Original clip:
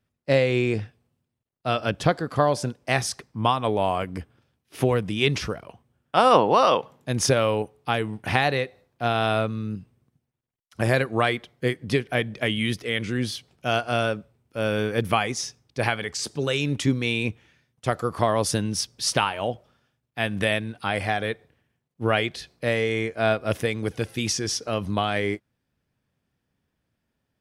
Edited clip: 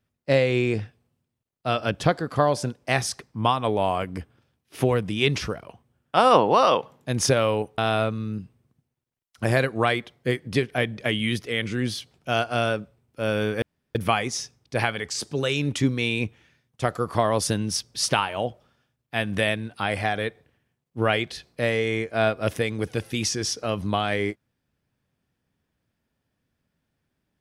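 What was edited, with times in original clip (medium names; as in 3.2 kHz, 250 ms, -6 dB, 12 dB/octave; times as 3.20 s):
7.78–9.15 s: delete
14.99 s: insert room tone 0.33 s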